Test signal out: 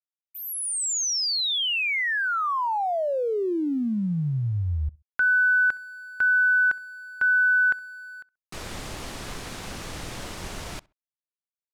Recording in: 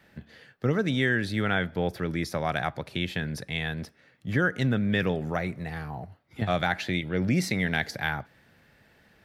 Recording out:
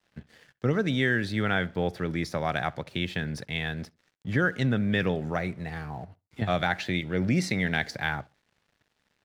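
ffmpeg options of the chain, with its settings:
-filter_complex "[0:a]lowpass=9.2k,aeval=exprs='sgn(val(0))*max(abs(val(0))-0.0015,0)':c=same,asplit=2[a][b];[b]adelay=66,lowpass=f=2.6k:p=1,volume=-24dB,asplit=2[c][d];[d]adelay=66,lowpass=f=2.6k:p=1,volume=0.26[e];[c][e]amix=inputs=2:normalize=0[f];[a][f]amix=inputs=2:normalize=0"

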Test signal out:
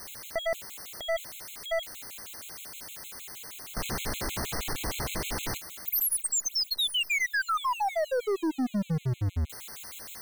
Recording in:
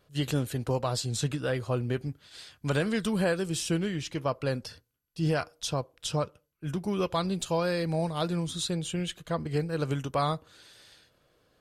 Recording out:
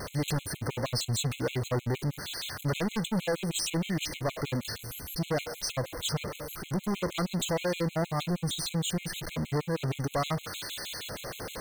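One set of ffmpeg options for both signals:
-af "aeval=exprs='val(0)+0.5*0.02*sgn(val(0))':c=same,aeval=exprs='0.15*(cos(1*acos(clip(val(0)/0.15,-1,1)))-cos(1*PI/2))+0.0211*(cos(2*acos(clip(val(0)/0.15,-1,1)))-cos(2*PI/2))+0.0473*(cos(5*acos(clip(val(0)/0.15,-1,1)))-cos(5*PI/2))+0.00188*(cos(7*acos(clip(val(0)/0.15,-1,1)))-cos(7*PI/2))':c=same,afftfilt=real='re*gt(sin(2*PI*6.4*pts/sr)*(1-2*mod(floor(b*sr/1024/2100),2)),0)':imag='im*gt(sin(2*PI*6.4*pts/sr)*(1-2*mod(floor(b*sr/1024/2100),2)),0)':win_size=1024:overlap=0.75,volume=-4.5dB"

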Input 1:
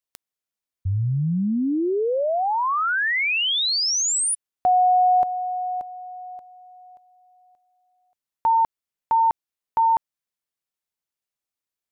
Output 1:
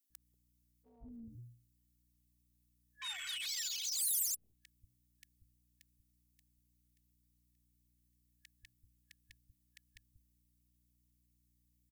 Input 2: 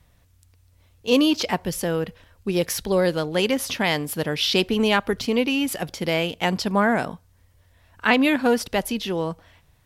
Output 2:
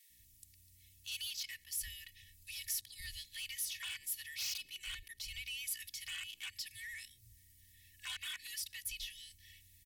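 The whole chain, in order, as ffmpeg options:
-filter_complex "[0:a]afftfilt=real='re*(1-between(b*sr/4096,120,1700))':imag='im*(1-between(b*sr/4096,120,1700))':win_size=4096:overlap=0.75,afwtdn=0.0562,bandreject=f=60:t=h:w=6,bandreject=f=120:t=h:w=6,bandreject=f=180:t=h:w=6,afftfilt=real='re*lt(hypot(re,im),0.112)':imag='im*lt(hypot(re,im),0.112)':win_size=1024:overlap=0.75,equalizer=f=300:w=1.1:g=12.5,aecho=1:1:2.7:0.89,acompressor=threshold=-52dB:ratio=2.5:attack=0.14:release=106:knee=6:detection=peak,aeval=exprs='val(0)+0.000141*(sin(2*PI*60*n/s)+sin(2*PI*2*60*n/s)/2+sin(2*PI*3*60*n/s)/3+sin(2*PI*4*60*n/s)/4+sin(2*PI*5*60*n/s)/5)':c=same,aeval=exprs='0.015*(cos(1*acos(clip(val(0)/0.015,-1,1)))-cos(1*PI/2))+0.00596*(cos(2*acos(clip(val(0)/0.015,-1,1)))-cos(2*PI/2))+0.00266*(cos(4*acos(clip(val(0)/0.015,-1,1)))-cos(4*PI/2))+0.00376*(cos(5*acos(clip(val(0)/0.015,-1,1)))-cos(5*PI/2))':c=same,crystalizer=i=6:c=0,acrossover=split=410[a][b];[a]adelay=190[c];[c][b]amix=inputs=2:normalize=0,adynamicequalizer=threshold=0.00251:dfrequency=4100:dqfactor=0.7:tfrequency=4100:tqfactor=0.7:attack=5:release=100:ratio=0.438:range=1.5:mode=cutabove:tftype=highshelf,volume=-5.5dB"

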